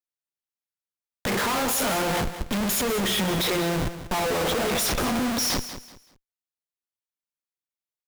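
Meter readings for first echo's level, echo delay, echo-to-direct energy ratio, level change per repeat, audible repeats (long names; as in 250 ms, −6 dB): −12.0 dB, 190 ms, −11.5 dB, −11.0 dB, 3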